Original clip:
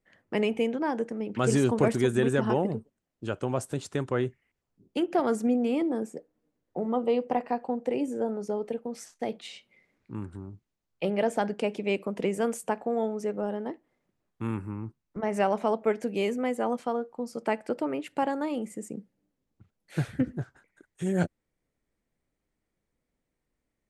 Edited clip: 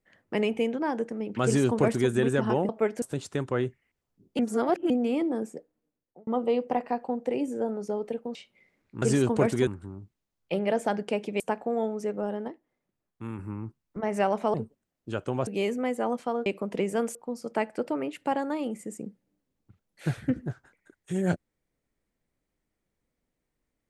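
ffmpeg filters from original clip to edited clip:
-filter_complex "[0:a]asplit=16[a][b][c][d][e][f][g][h][i][j][k][l][m][n][o][p];[a]atrim=end=2.692[q];[b]atrim=start=15.738:end=16.072[r];[c]atrim=start=3.618:end=4.992[s];[d]atrim=start=4.988:end=5.502,asetpts=PTS-STARTPTS,areverse[t];[e]atrim=start=5.498:end=6.87,asetpts=PTS-STARTPTS,afade=t=out:st=0.602:d=0.77[u];[f]atrim=start=6.87:end=8.952,asetpts=PTS-STARTPTS,afade=t=in:d=0.004:c=hsin[v];[g]atrim=start=9.508:end=10.182[w];[h]atrim=start=1.438:end=2.092[x];[i]atrim=start=10.178:end=11.912[y];[j]atrim=start=12.598:end=13.682[z];[k]atrim=start=13.678:end=14.592,asetpts=PTS-STARTPTS,volume=-5.5dB[aa];[l]atrim=start=14.588:end=15.742[ab];[m]atrim=start=2.688:end=3.622[ac];[n]atrim=start=16.068:end=17.062[ad];[o]atrim=start=11.908:end=12.602[ae];[p]atrim=start=17.058[af];[q][r]acrossfade=d=0.004:c1=hsin:c2=hsin[ag];[ag][s]acrossfade=d=0.004:c1=hsin:c2=hsin[ah];[ah][t]acrossfade=d=0.004:c1=hsin:c2=hsin[ai];[u][v]concat=n=2:v=0:a=1[aj];[ai][aj]acrossfade=d=0.004:c1=hsin:c2=hsin[ak];[ak][w]acrossfade=d=0.004:c1=hsin:c2=hsin[al];[al][x]acrossfade=d=0.004:c1=hsin:c2=hsin[am];[am][y]acrossfade=d=0.004:c1=hsin:c2=hsin[an];[an][z]acrossfade=d=0.004:c1=hsin:c2=hsin[ao];[ao][aa]acrossfade=d=0.004:c1=hsin:c2=hsin[ap];[ap][ab]acrossfade=d=0.004:c1=hsin:c2=hsin[aq];[aq][ac]acrossfade=d=0.004:c1=hsin:c2=hsin[ar];[ar][ad]acrossfade=d=0.004:c1=hsin:c2=hsin[as];[as][ae]acrossfade=d=0.004:c1=hsin:c2=hsin[at];[at][af]acrossfade=d=0.004:c1=hsin:c2=hsin"

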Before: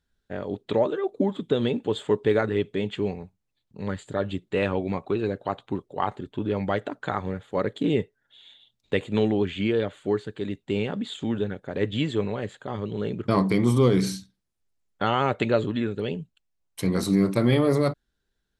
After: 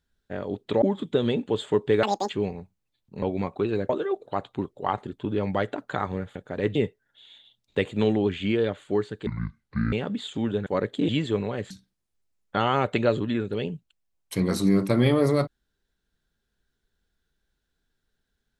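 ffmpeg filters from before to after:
-filter_complex "[0:a]asplit=14[a][b][c][d][e][f][g][h][i][j][k][l][m][n];[a]atrim=end=0.822[o];[b]atrim=start=1.188:end=2.404[p];[c]atrim=start=2.4:end=2.92,asetpts=PTS-STARTPTS,asetrate=86877,aresample=44100[q];[d]atrim=start=2.916:end=3.852[r];[e]atrim=start=4.728:end=5.402[s];[f]atrim=start=0.818:end=1.192[t];[g]atrim=start=5.398:end=7.492[u];[h]atrim=start=11.528:end=11.932[v];[i]atrim=start=7.908:end=10.424[w];[j]atrim=start=10.42:end=10.79,asetpts=PTS-STARTPTS,asetrate=24696,aresample=44100,atrim=end_sample=29137,asetpts=PTS-STARTPTS[x];[k]atrim=start=10.786:end=11.532[y];[l]atrim=start=7.488:end=7.912[z];[m]atrim=start=11.928:end=12.552[aa];[n]atrim=start=14.168[ab];[o][p]acrossfade=d=0.004:c1=hsin:c2=hsin[ac];[ac][q]acrossfade=d=0.004:c1=hsin:c2=hsin[ad];[ad][r]acrossfade=d=0.004:c1=hsin:c2=hsin[ae];[ae][s]acrossfade=d=0.004:c1=hsin:c2=hsin[af];[af][t]acrossfade=d=0.004:c1=hsin:c2=hsin[ag];[ag][u]acrossfade=d=0.004:c1=hsin:c2=hsin[ah];[ah][v]acrossfade=d=0.004:c1=hsin:c2=hsin[ai];[ai][w]acrossfade=d=0.004:c1=hsin:c2=hsin[aj];[aj][x]acrossfade=d=0.004:c1=hsin:c2=hsin[ak];[ak][y]acrossfade=d=0.004:c1=hsin:c2=hsin[al];[al][z]acrossfade=d=0.004:c1=hsin:c2=hsin[am];[am][aa]acrossfade=d=0.004:c1=hsin:c2=hsin[an];[an][ab]acrossfade=d=0.004:c1=hsin:c2=hsin"

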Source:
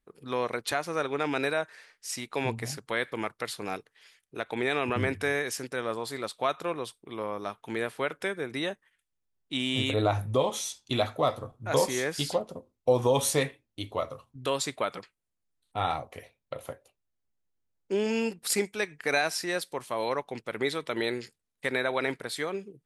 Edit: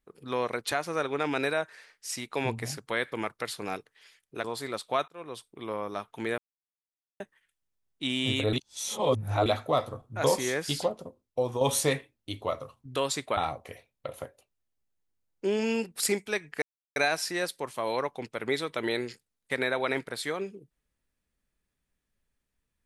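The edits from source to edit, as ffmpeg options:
-filter_complex "[0:a]asplit=10[a][b][c][d][e][f][g][h][i][j];[a]atrim=end=4.442[k];[b]atrim=start=5.938:end=6.58,asetpts=PTS-STARTPTS,afade=t=out:st=0.638:d=0.004:c=hsin[l];[c]atrim=start=6.58:end=7.88,asetpts=PTS-STARTPTS,afade=t=in:d=0.42,afade=t=out:st=1.296:d=0.004:c=hsin[m];[d]atrim=start=7.88:end=8.7,asetpts=PTS-STARTPTS,volume=0[n];[e]atrim=start=8.7:end=10.032,asetpts=PTS-STARTPTS,afade=t=in:d=0.004:c=hsin[o];[f]atrim=start=10.028:end=10.962,asetpts=PTS-STARTPTS,areverse[p];[g]atrim=start=10.958:end=13.11,asetpts=PTS-STARTPTS,afade=t=out:st=1.382:d=0.77:silence=0.398107[q];[h]atrim=start=13.11:end=14.872,asetpts=PTS-STARTPTS,afade=t=in:d=0.004:c=hsin:silence=0.398107[r];[i]atrim=start=15.838:end=19.09,asetpts=PTS-STARTPTS,afade=t=out:st=3.248:d=0.004:c=hsin,apad=pad_dur=0.34[s];[j]atrim=start=19.09,asetpts=PTS-STARTPTS,afade=t=in:d=0.004:c=hsin[t];[l][m][n][o]concat=n=4:v=0:a=1[u];[k][u]acrossfade=d=0.004:c1=hsin:c2=hsin[v];[v][p]acrossfade=d=0.004:c1=hsin:c2=hsin[w];[q][r]concat=n=2:v=0:a=1[x];[w][x]acrossfade=d=0.004:c1=hsin:c2=hsin[y];[s][t]concat=n=2:v=0:a=1[z];[y][z]acrossfade=d=0.004:c1=hsin:c2=hsin"

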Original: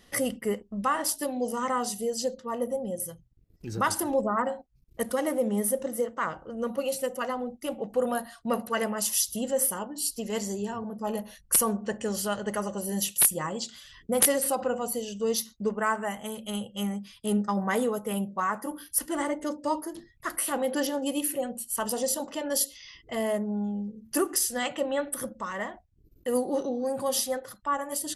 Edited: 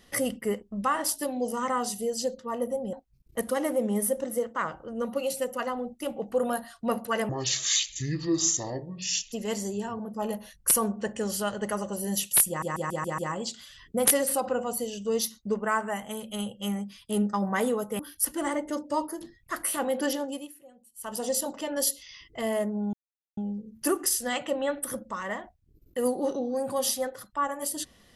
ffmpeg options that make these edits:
-filter_complex "[0:a]asplit=13[a][b][c][d][e][f][g][h][i][j][k][l][m];[a]atrim=end=2.932[n];[b]atrim=start=4.548:end=8.914[o];[c]atrim=start=8.91:end=10.17,asetpts=PTS-STARTPTS,asetrate=27342,aresample=44100[p];[d]atrim=start=10.166:end=13.472[q];[e]atrim=start=13.328:end=13.472[r];[f]atrim=start=13.328:end=13.472[s];[g]atrim=start=13.328:end=13.472[t];[h]atrim=start=13.328:end=13.472[u];[i]atrim=start=13.328:end=18.142[v];[j]atrim=start=18.728:end=21.26,asetpts=PTS-STARTPTS,afade=t=out:st=2.152:d=0.38:silence=0.0794328[w];[k]atrim=start=21.26:end=21.66,asetpts=PTS-STARTPTS,volume=-22dB[x];[l]atrim=start=21.66:end=23.67,asetpts=PTS-STARTPTS,afade=t=in:d=0.38:silence=0.0794328,afade=t=out:st=2.006:d=0.004:c=hsin,apad=pad_dur=0.44[y];[m]atrim=start=23.67,asetpts=PTS-STARTPTS,afade=t=in:d=0.004:c=hsin[z];[n][o]acrossfade=d=0.004:c1=hsin:c2=hsin[aa];[aa][p]acrossfade=d=0.004:c1=hsin:c2=hsin[ab];[ab][q]acrossfade=d=0.004:c1=hsin:c2=hsin[ac];[ac][r]acrossfade=d=0.004:c1=hsin:c2=hsin[ad];[ad][s]acrossfade=d=0.004:c1=hsin:c2=hsin[ae];[ae][t]acrossfade=d=0.004:c1=hsin:c2=hsin[af];[af][u]acrossfade=d=0.004:c1=hsin:c2=hsin[ag];[ag][v]acrossfade=d=0.004:c1=hsin:c2=hsin[ah];[w][x][y][z]concat=n=4:v=0:a=1[ai];[ah][ai]acrossfade=d=0.004:c1=hsin:c2=hsin"

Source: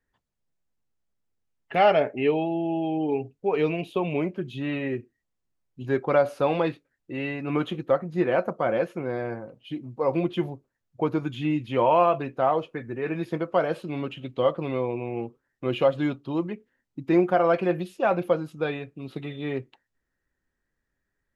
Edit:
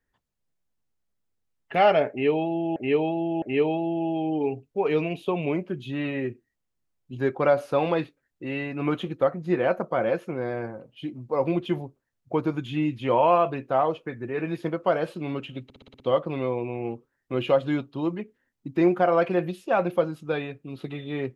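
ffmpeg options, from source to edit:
-filter_complex "[0:a]asplit=9[a][b][c][d][e][f][g][h][i];[a]atrim=end=2.762[j];[b]atrim=start=2.098:end=2.762[k];[c]atrim=start=2.098:end=14.382[l];[d]atrim=start=14.318:end=14.382[m];[e]atrim=start=14.318:end=14.382[n];[f]atrim=start=14.318:end=14.382[o];[g]atrim=start=14.318:end=14.382[p];[h]atrim=start=14.318:end=14.382[q];[i]atrim=start=14.318[r];[j][k]acrossfade=d=0.004:c1=hsin:c2=hsin[s];[s][l]acrossfade=d=0.004:c1=hsin:c2=hsin[t];[t][m]acrossfade=d=0.004:c1=hsin:c2=hsin[u];[u][n]acrossfade=d=0.004:c1=hsin:c2=hsin[v];[v][o]acrossfade=d=0.004:c1=hsin:c2=hsin[w];[w][p]acrossfade=d=0.004:c1=hsin:c2=hsin[x];[x][q]acrossfade=d=0.004:c1=hsin:c2=hsin[y];[y][r]acrossfade=d=0.004:c1=hsin:c2=hsin"

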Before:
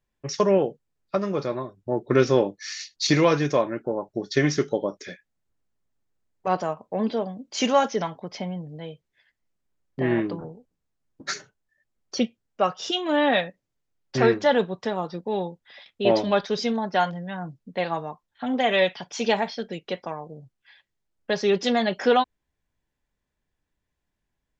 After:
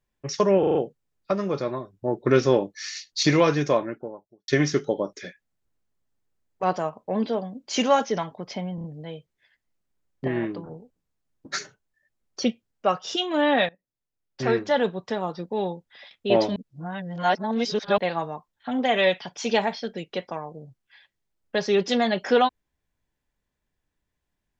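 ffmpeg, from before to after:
-filter_complex "[0:a]asplit=14[a][b][c][d][e][f][g][h][i][j][k][l][m][n];[a]atrim=end=0.632[o];[b]atrim=start=0.588:end=0.632[p];[c]atrim=start=0.588:end=0.632[q];[d]atrim=start=0.588:end=0.632[r];[e]atrim=start=0.588:end=4.32,asetpts=PTS-STARTPTS,afade=t=out:st=3.072:d=0.66:c=qua[s];[f]atrim=start=4.32:end=8.622,asetpts=PTS-STARTPTS,afade=t=in:d=0.004:c=hsin[t];[g]atrim=start=8.588:end=8.622[u];[h]atrim=start=8.588:end=8.622[v];[i]atrim=start=8.588:end=10.032[w];[j]atrim=start=10.028:end=10.462,asetpts=PTS-STARTPTS,volume=-4dB[x];[k]atrim=start=10.458:end=13.44,asetpts=PTS-STARTPTS,afade=t=out:st=2.978:d=0.004:c=hsin:silence=0.1[y];[l]atrim=start=13.44:end=16.312,asetpts=PTS-STARTPTS,afade=t=in:d=1.97:c=qsin:silence=0.1[z];[m]atrim=start=16.308:end=17.732,asetpts=PTS-STARTPTS,areverse[aa];[n]atrim=start=17.728[ab];[o][p]acrossfade=d=0.004:c1=hsin:c2=hsin[ac];[ac][q]acrossfade=d=0.004:c1=hsin:c2=hsin[ad];[ad][r]acrossfade=d=0.004:c1=hsin:c2=hsin[ae];[s][t]concat=n=2:v=0:a=1[af];[ae][af]acrossfade=d=0.004:c1=hsin:c2=hsin[ag];[ag][u]acrossfade=d=0.004:c1=hsin:c2=hsin[ah];[ah][v]acrossfade=d=0.004:c1=hsin:c2=hsin[ai];[ai][w]acrossfade=d=0.004:c1=hsin:c2=hsin[aj];[aj][x]acrossfade=d=0.004:c1=hsin:c2=hsin[ak];[y][z]concat=n=2:v=0:a=1[al];[ak][al]acrossfade=d=0.004:c1=hsin:c2=hsin[am];[am][aa]acrossfade=d=0.004:c1=hsin:c2=hsin[an];[an][ab]acrossfade=d=0.004:c1=hsin:c2=hsin"

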